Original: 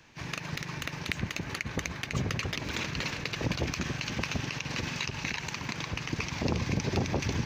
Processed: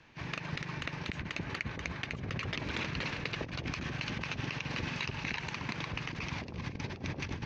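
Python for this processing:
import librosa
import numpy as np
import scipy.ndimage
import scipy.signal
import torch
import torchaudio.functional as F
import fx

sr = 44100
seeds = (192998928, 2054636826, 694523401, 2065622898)

y = scipy.signal.sosfilt(scipy.signal.butter(2, 3900.0, 'lowpass', fs=sr, output='sos'), x)
y = fx.over_compress(y, sr, threshold_db=-33.0, ratio=-0.5)
y = F.gain(torch.from_numpy(y), -3.0).numpy()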